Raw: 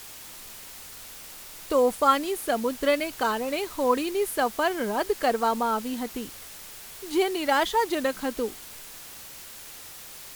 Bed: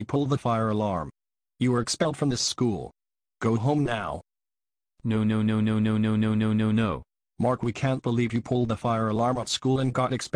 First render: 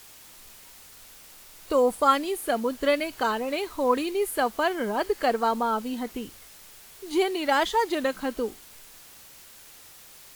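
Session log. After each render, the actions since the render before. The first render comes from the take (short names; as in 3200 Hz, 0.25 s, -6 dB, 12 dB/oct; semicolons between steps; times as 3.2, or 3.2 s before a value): noise print and reduce 6 dB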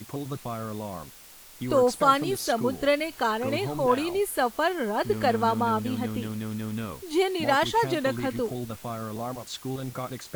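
add bed -9 dB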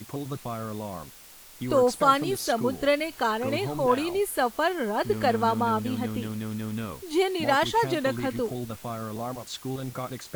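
nothing audible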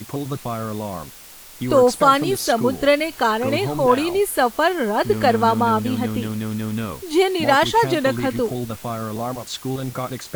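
gain +7 dB; limiter -3 dBFS, peak gain reduction 2.5 dB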